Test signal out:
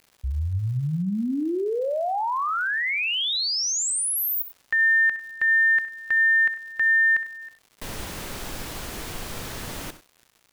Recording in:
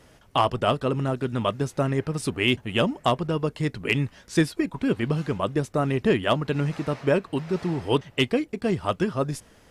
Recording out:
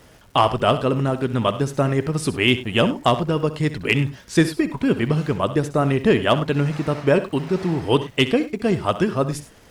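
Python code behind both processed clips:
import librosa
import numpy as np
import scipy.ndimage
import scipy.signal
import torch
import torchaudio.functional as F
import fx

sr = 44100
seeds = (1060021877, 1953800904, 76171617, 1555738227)

y = fx.dmg_crackle(x, sr, seeds[0], per_s=240.0, level_db=-47.0)
y = fx.echo_multitap(y, sr, ms=(65, 99), db=(-14.0, -17.5))
y = y * librosa.db_to_amplitude(4.5)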